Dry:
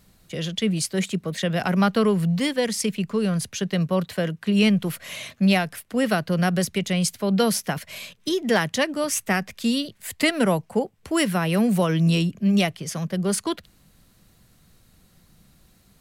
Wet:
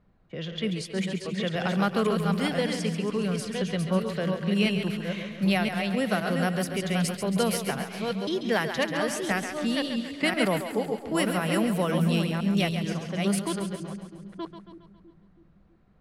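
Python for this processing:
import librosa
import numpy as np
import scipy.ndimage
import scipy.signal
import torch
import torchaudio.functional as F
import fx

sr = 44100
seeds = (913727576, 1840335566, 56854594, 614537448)

y = fx.reverse_delay(x, sr, ms=517, wet_db=-4.5)
y = fx.env_lowpass(y, sr, base_hz=1300.0, full_db=-16.5)
y = fx.peak_eq(y, sr, hz=110.0, db=-2.5, octaves=2.7)
y = fx.echo_split(y, sr, split_hz=340.0, low_ms=326, high_ms=137, feedback_pct=52, wet_db=-8.5)
y = fx.dynamic_eq(y, sr, hz=6400.0, q=1.6, threshold_db=-44.0, ratio=4.0, max_db=-6)
y = F.gain(torch.from_numpy(y), -4.5).numpy()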